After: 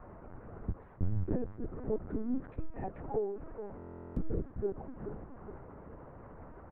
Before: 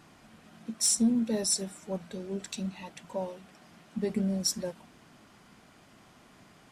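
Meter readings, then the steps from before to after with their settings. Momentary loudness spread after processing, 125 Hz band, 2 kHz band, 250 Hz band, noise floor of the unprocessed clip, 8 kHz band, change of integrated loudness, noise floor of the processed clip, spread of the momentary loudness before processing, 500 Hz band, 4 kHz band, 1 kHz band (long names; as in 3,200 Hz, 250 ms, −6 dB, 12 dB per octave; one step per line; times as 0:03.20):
15 LU, +1.5 dB, −9.0 dB, −8.0 dB, −58 dBFS, below −40 dB, −9.0 dB, −53 dBFS, 17 LU, −1.0 dB, below −40 dB, 0.0 dB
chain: low-shelf EQ 130 Hz −4 dB
on a send: repeating echo 423 ms, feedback 51%, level −18.5 dB
on the sum: downward compressor 3 to 1, threshold −41 dBFS, peak gain reduction 14 dB
harmonic generator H 3 −25 dB, 5 −36 dB, 8 −39 dB, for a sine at −24 dBFS
parametric band 490 Hz +2 dB 1.1 octaves
noise that follows the level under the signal 16 dB
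frequency shifter −140 Hz
Bessel low-pass filter 930 Hz, order 6
linear-prediction vocoder at 8 kHz pitch kept
buffer that repeats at 0:03.77, samples 1,024, times 16
level +9.5 dB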